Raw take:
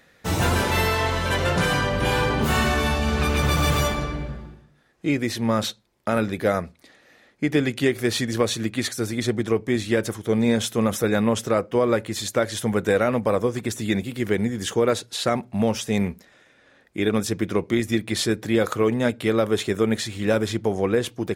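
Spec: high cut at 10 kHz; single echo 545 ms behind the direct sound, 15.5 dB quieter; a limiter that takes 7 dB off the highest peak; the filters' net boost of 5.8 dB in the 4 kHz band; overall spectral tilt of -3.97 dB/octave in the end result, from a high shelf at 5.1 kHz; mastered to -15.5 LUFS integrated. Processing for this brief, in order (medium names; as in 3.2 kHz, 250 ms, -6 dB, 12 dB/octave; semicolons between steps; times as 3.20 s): low-pass 10 kHz; peaking EQ 4 kHz +4 dB; treble shelf 5.1 kHz +7.5 dB; peak limiter -12 dBFS; delay 545 ms -15.5 dB; trim +8 dB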